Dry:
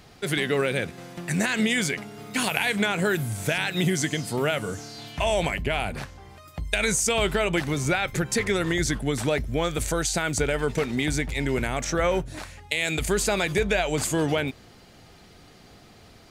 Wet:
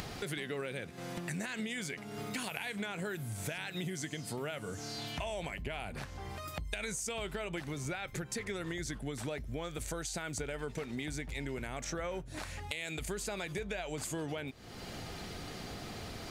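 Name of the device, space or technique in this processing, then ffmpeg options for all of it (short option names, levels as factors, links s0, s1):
upward and downward compression: -af "acompressor=mode=upward:threshold=0.0501:ratio=2.5,acompressor=threshold=0.0251:ratio=4,volume=0.562"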